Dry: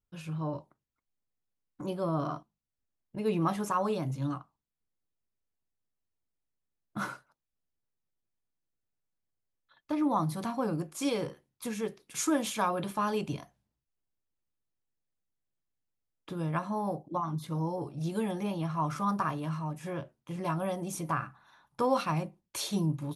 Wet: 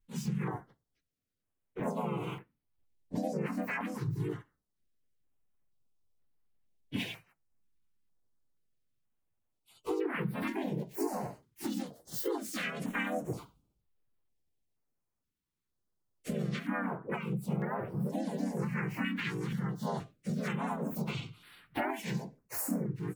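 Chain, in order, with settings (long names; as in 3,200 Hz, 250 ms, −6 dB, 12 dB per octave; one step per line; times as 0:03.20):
partials spread apart or drawn together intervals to 129%
downward compressor 12 to 1, threshold −41 dBFS, peak gain reduction 17.5 dB
pitch-shifted copies added +3 semitones 0 dB, +5 semitones −2 dB, +7 semitones −1 dB
notch on a step sequencer 2.1 Hz 650–6,700 Hz
level +5 dB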